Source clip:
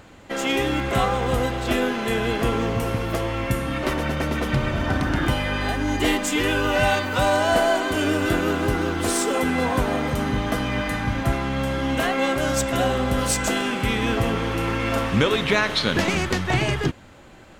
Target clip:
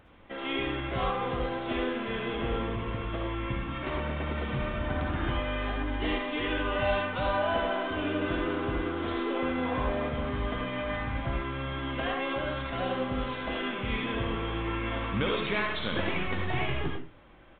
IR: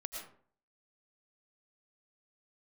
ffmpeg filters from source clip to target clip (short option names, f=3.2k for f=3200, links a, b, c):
-filter_complex "[0:a]aresample=8000,aresample=44100[a];[1:a]atrim=start_sample=2205,asetrate=74970,aresample=44100[b];[a][b]afir=irnorm=-1:irlink=0,volume=-2.5dB"